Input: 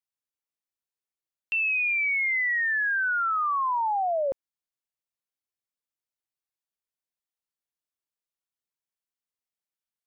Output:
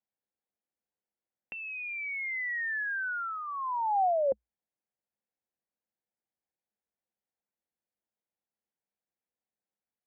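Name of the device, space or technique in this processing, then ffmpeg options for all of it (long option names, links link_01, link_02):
bass amplifier: -filter_complex "[0:a]asplit=3[link_01][link_02][link_03];[link_01]afade=type=out:start_time=2.83:duration=0.02[link_04];[link_02]highpass=frequency=1100:poles=1,afade=type=in:start_time=2.83:duration=0.02,afade=type=out:start_time=3.47:duration=0.02[link_05];[link_03]afade=type=in:start_time=3.47:duration=0.02[link_06];[link_04][link_05][link_06]amix=inputs=3:normalize=0,acompressor=threshold=-30dB:ratio=6,highpass=60,equalizer=frequency=60:width_type=q:width=4:gain=9,equalizer=frequency=210:width_type=q:width=4:gain=10,equalizer=frequency=340:width_type=q:width=4:gain=4,equalizer=frequency=510:width_type=q:width=4:gain=7,equalizer=frequency=760:width_type=q:width=4:gain=6,equalizer=frequency=1200:width_type=q:width=4:gain=-7,lowpass=frequency=2100:width=0.5412,lowpass=frequency=2100:width=1.3066"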